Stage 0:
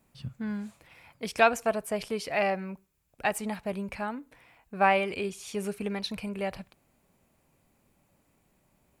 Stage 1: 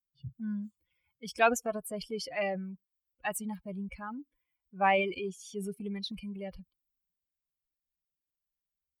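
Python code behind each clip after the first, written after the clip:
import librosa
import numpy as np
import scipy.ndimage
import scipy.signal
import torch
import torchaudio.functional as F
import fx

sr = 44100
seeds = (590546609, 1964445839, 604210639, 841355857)

y = fx.bin_expand(x, sr, power=2.0)
y = fx.transient(y, sr, attack_db=-3, sustain_db=5)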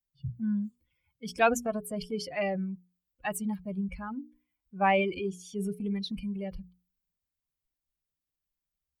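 y = fx.low_shelf(x, sr, hz=270.0, db=9.5)
y = fx.hum_notches(y, sr, base_hz=60, count=7)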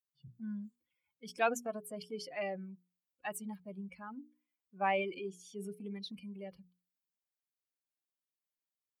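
y = scipy.signal.sosfilt(scipy.signal.butter(2, 240.0, 'highpass', fs=sr, output='sos'), x)
y = F.gain(torch.from_numpy(y), -7.0).numpy()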